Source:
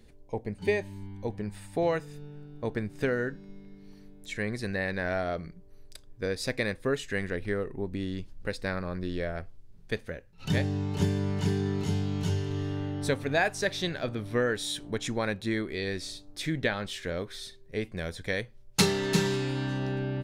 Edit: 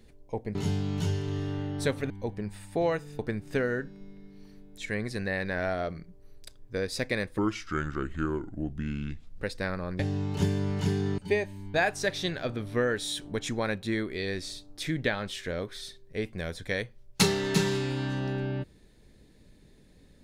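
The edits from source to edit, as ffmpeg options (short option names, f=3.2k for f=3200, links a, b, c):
-filter_complex "[0:a]asplit=9[a][b][c][d][e][f][g][h][i];[a]atrim=end=0.552[j];[b]atrim=start=11.778:end=13.332[k];[c]atrim=start=1.108:end=2.202[l];[d]atrim=start=2.668:end=6.864[m];[e]atrim=start=6.86:end=8.34,asetpts=PTS-STARTPTS,asetrate=33957,aresample=44100[n];[f]atrim=start=8.336:end=9.032[o];[g]atrim=start=10.588:end=11.782[p];[h]atrim=start=0.548:end=1.112[q];[i]atrim=start=13.328[r];[j][k]acrossfade=d=0.004:c1=hsin:c2=hsin[s];[s][l]acrossfade=d=0.004:c1=hsin:c2=hsin[t];[t][m]acrossfade=d=0.004:c1=hsin:c2=hsin[u];[u][n]acrossfade=d=0.004:c1=hsin:c2=hsin[v];[v][o]acrossfade=d=0.004:c1=hsin:c2=hsin[w];[w][p]acrossfade=d=0.004:c1=hsin:c2=hsin[x];[x][q]acrossfade=d=0.004:c1=hsin:c2=hsin[y];[y][r]acrossfade=d=0.004:c1=hsin:c2=hsin"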